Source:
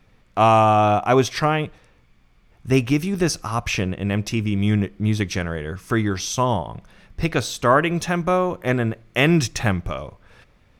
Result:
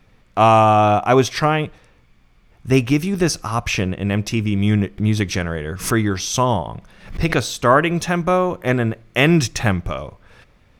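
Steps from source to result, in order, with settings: 4.98–7.50 s: swell ahead of each attack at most 130 dB/s; trim +2.5 dB

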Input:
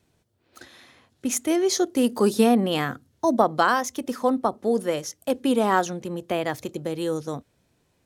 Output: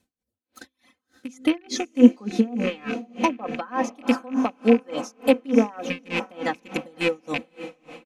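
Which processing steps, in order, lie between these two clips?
rattle on loud lows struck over -33 dBFS, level -17 dBFS; treble shelf 7.6 kHz +5.5 dB; low-pass that closes with the level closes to 1.8 kHz, closed at -15.5 dBFS; peaking EQ 240 Hz +4.5 dB 0.69 oct; comb 3.9 ms, depth 68%; gate -42 dBFS, range -8 dB; reverb removal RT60 0.65 s; de-hum 64.76 Hz, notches 8; on a send: echo that smears into a reverb 545 ms, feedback 47%, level -13 dB; on the sum: logarithmic tremolo 3.4 Hz, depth 28 dB; trim +3.5 dB

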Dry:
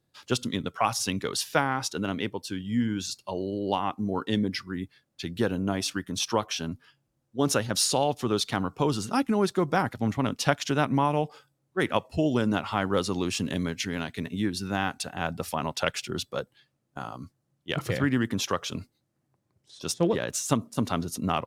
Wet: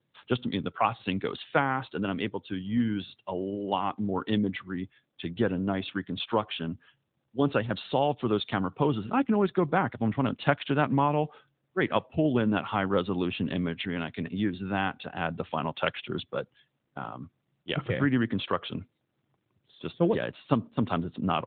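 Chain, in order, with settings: AMR-NB 12.2 kbps 8 kHz

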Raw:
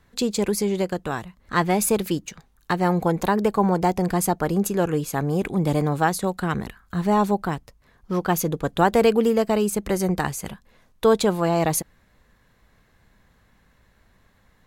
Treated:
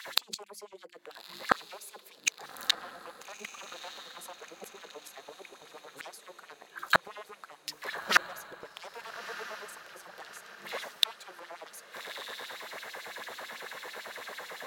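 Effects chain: sine folder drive 13 dB, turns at -6 dBFS; LFO high-pass sine 9 Hz 440–4100 Hz; hum notches 50/100/150/200/250/300/350 Hz; inverted gate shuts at -9 dBFS, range -40 dB; on a send: echo that smears into a reverb 1269 ms, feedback 50%, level -13.5 dB; on the sum: trim +3 dB

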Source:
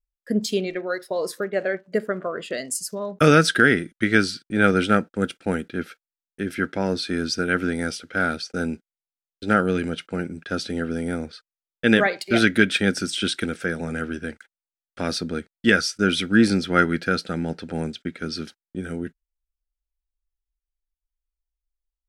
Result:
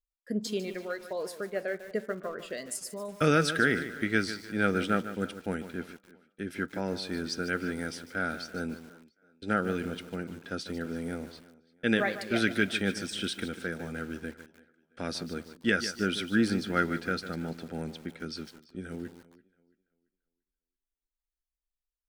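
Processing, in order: on a send: tape echo 338 ms, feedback 35%, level -20 dB, low-pass 6 kHz; on the sum: bit-crushed delay 149 ms, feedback 35%, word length 6-bit, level -11.5 dB; trim -9 dB

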